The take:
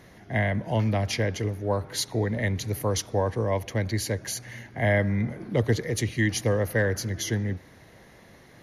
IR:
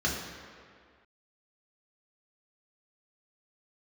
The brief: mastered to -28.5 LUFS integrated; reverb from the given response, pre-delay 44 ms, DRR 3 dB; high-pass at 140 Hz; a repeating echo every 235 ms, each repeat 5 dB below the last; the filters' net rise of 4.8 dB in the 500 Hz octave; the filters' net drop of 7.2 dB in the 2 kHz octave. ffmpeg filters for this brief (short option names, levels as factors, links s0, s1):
-filter_complex "[0:a]highpass=140,equalizer=f=500:t=o:g=6,equalizer=f=2000:t=o:g=-8.5,aecho=1:1:235|470|705|940|1175|1410|1645:0.562|0.315|0.176|0.0988|0.0553|0.031|0.0173,asplit=2[s0][s1];[1:a]atrim=start_sample=2205,adelay=44[s2];[s1][s2]afir=irnorm=-1:irlink=0,volume=0.224[s3];[s0][s3]amix=inputs=2:normalize=0,volume=0.501"